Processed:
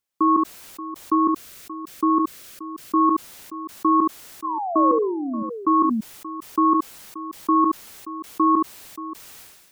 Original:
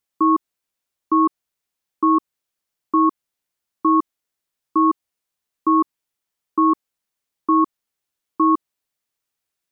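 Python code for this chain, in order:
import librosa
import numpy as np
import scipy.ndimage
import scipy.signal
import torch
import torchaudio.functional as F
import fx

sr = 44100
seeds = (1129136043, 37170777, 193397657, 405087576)

p1 = fx.peak_eq(x, sr, hz=870.0, db=-12.0, octaves=0.36, at=(1.15, 2.96))
p2 = fx.level_steps(p1, sr, step_db=22)
p3 = p1 + (p2 * 10.0 ** (-1.0 / 20.0))
p4 = fx.spec_paint(p3, sr, seeds[0], shape='fall', start_s=4.44, length_s=0.99, low_hz=210.0, high_hz=1100.0, level_db=-22.0)
p5 = p4 + fx.echo_multitap(p4, sr, ms=(71, 579), db=(-13.5, -15.0), dry=0)
p6 = fx.sustainer(p5, sr, db_per_s=42.0)
y = p6 * 10.0 ** (-5.0 / 20.0)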